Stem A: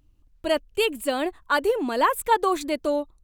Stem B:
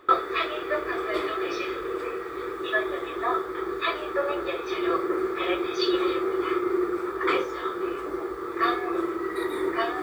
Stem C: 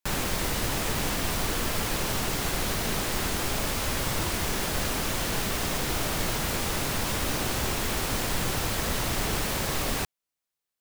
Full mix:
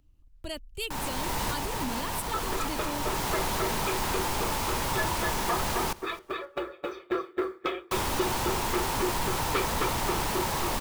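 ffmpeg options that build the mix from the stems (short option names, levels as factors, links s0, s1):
-filter_complex "[0:a]acrossover=split=210|3000[s0][s1][s2];[s1]acompressor=threshold=0.00631:ratio=2[s3];[s0][s3][s2]amix=inputs=3:normalize=0,asubboost=boost=8.5:cutoff=190,volume=0.668,asplit=2[s4][s5];[1:a]aeval=exprs='val(0)*pow(10,-39*if(lt(mod(3.7*n/s,1),2*abs(3.7)/1000),1-mod(3.7*n/s,1)/(2*abs(3.7)/1000),(mod(3.7*n/s,1)-2*abs(3.7)/1000)/(1-2*abs(3.7)/1000))/20)':c=same,adelay=2250,volume=1.41,asplit=2[s6][s7];[s7]volume=0.596[s8];[2:a]equalizer=f=920:w=3.6:g=12,adelay=850,volume=0.841,asplit=3[s9][s10][s11];[s9]atrim=end=5.93,asetpts=PTS-STARTPTS,afade=t=out:st=5.926:d=0.004:c=hsin[s12];[s10]atrim=start=5.93:end=7.91,asetpts=PTS-STARTPTS,volume=0[s13];[s11]atrim=start=7.91,asetpts=PTS-STARTPTS,afade=t=in:d=0.004:c=hsin[s14];[s12][s13][s14]concat=n=3:v=0:a=1,asplit=2[s15][s16];[s16]volume=0.0891[s17];[s5]apad=whole_len=514051[s18];[s15][s18]sidechaincompress=threshold=0.02:ratio=8:attack=7.8:release=575[s19];[s8][s17]amix=inputs=2:normalize=0,aecho=0:1:263|526|789:1|0.19|0.0361[s20];[s4][s6][s19][s20]amix=inputs=4:normalize=0,asoftclip=type=tanh:threshold=0.1"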